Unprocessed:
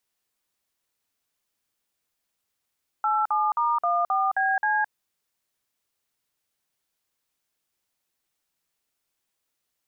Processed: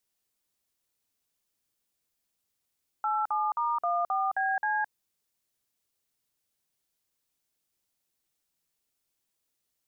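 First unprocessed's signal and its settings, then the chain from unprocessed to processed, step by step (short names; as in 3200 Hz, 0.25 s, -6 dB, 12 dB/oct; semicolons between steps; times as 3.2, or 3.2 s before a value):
DTMF "87*14BC", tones 0.215 s, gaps 50 ms, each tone -23 dBFS
bell 1400 Hz -5.5 dB 2.7 oct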